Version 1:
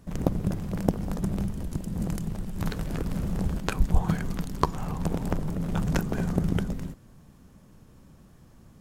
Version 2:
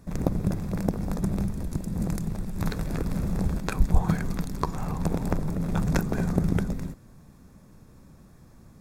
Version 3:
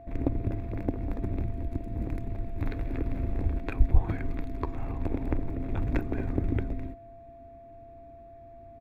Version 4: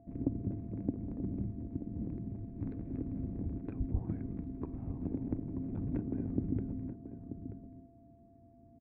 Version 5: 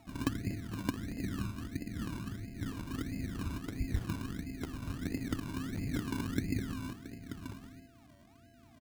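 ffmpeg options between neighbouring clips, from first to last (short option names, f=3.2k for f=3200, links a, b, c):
-af "bandreject=f=3k:w=5,alimiter=level_in=8dB:limit=-1dB:release=50:level=0:latency=1,volume=-6.5dB"
-af "aeval=exprs='val(0)+0.01*sin(2*PI*680*n/s)':c=same,firequalizer=gain_entry='entry(110,0);entry(170,-20);entry(270,3);entry(460,-6);entry(1300,-10);entry(2200,-1);entry(5200,-23);entry(8800,-28);entry(13000,-20)':delay=0.05:min_phase=1"
-filter_complex "[0:a]bandpass=f=190:t=q:w=1.7:csg=0,asplit=2[a][b];[b]adelay=932.9,volume=-10dB,highshelf=f=4k:g=-21[c];[a][c]amix=inputs=2:normalize=0,volume=1dB"
-af "acrusher=samples=27:mix=1:aa=0.000001:lfo=1:lforange=16.2:lforate=1.5"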